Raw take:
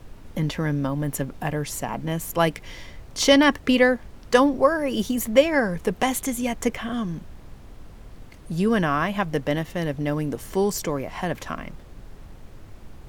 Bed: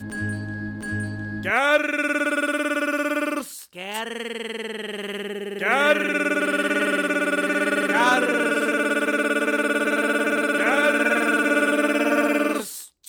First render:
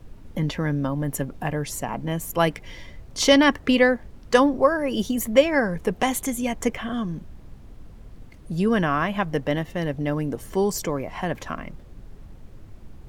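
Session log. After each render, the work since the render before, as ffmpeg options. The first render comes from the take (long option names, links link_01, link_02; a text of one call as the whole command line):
ffmpeg -i in.wav -af "afftdn=noise_reduction=6:noise_floor=-45" out.wav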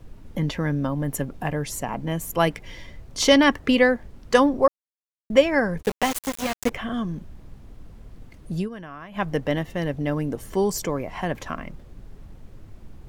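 ffmpeg -i in.wav -filter_complex "[0:a]asplit=3[link_01][link_02][link_03];[link_01]afade=type=out:start_time=5.81:duration=0.02[link_04];[link_02]aeval=exprs='val(0)*gte(abs(val(0)),0.0708)':channel_layout=same,afade=type=in:start_time=5.81:duration=0.02,afade=type=out:start_time=6.69:duration=0.02[link_05];[link_03]afade=type=in:start_time=6.69:duration=0.02[link_06];[link_04][link_05][link_06]amix=inputs=3:normalize=0,asplit=5[link_07][link_08][link_09][link_10][link_11];[link_07]atrim=end=4.68,asetpts=PTS-STARTPTS,afade=type=out:start_time=4.676:duration=0.004:curve=hsin[link_12];[link_08]atrim=start=4.68:end=5.3,asetpts=PTS-STARTPTS,volume=0[link_13];[link_09]atrim=start=5.3:end=8.69,asetpts=PTS-STARTPTS,afade=type=in:duration=0.004:curve=hsin,afade=type=out:start_time=3.27:duration=0.12:silence=0.149624[link_14];[link_10]atrim=start=8.69:end=9.11,asetpts=PTS-STARTPTS,volume=-16.5dB[link_15];[link_11]atrim=start=9.11,asetpts=PTS-STARTPTS,afade=type=in:duration=0.12:silence=0.149624[link_16];[link_12][link_13][link_14][link_15][link_16]concat=n=5:v=0:a=1" out.wav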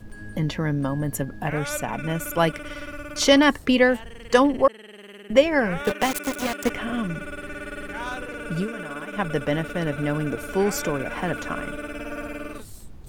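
ffmpeg -i in.wav -i bed.wav -filter_complex "[1:a]volume=-13.5dB[link_01];[0:a][link_01]amix=inputs=2:normalize=0" out.wav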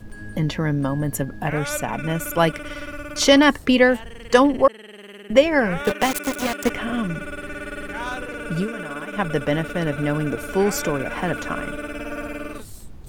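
ffmpeg -i in.wav -af "volume=2.5dB,alimiter=limit=-2dB:level=0:latency=1" out.wav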